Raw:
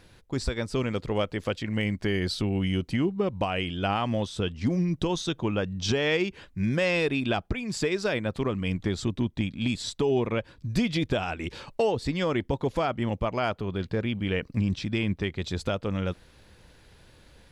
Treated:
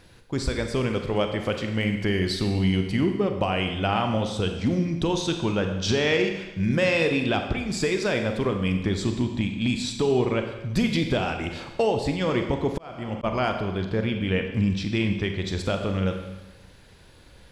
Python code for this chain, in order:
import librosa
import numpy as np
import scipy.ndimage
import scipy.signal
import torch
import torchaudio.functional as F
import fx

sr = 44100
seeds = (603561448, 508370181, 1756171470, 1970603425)

y = fx.rev_schroeder(x, sr, rt60_s=1.1, comb_ms=32, drr_db=5.0)
y = fx.auto_swell(y, sr, attack_ms=555.0, at=(12.15, 13.23), fade=0.02)
y = F.gain(torch.from_numpy(y), 2.0).numpy()